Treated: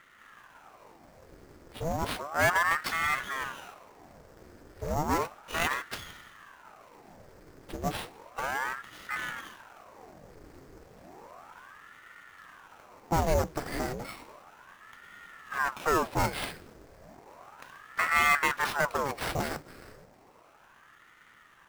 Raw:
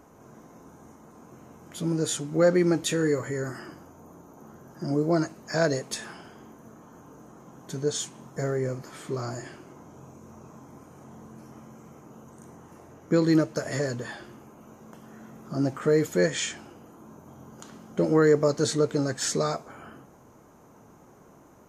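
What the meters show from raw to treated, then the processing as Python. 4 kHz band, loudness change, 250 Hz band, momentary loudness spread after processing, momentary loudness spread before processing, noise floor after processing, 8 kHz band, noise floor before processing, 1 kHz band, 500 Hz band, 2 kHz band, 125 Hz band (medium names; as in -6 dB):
-2.5 dB, -3.5 dB, -12.5 dB, 23 LU, 20 LU, -58 dBFS, -7.5 dB, -54 dBFS, +7.0 dB, -9.5 dB, +6.5 dB, -7.5 dB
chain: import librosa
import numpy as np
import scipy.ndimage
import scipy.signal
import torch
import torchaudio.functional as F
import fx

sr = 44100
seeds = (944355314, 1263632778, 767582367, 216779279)

y = fx.lower_of_two(x, sr, delay_ms=0.53)
y = fx.sample_hold(y, sr, seeds[0], rate_hz=6600.0, jitter_pct=0)
y = fx.ring_lfo(y, sr, carrier_hz=890.0, swing_pct=85, hz=0.33)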